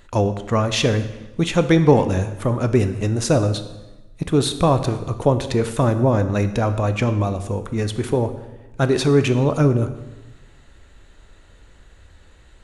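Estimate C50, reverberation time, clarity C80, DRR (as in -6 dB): 11.5 dB, 1.1 s, 13.5 dB, 9.5 dB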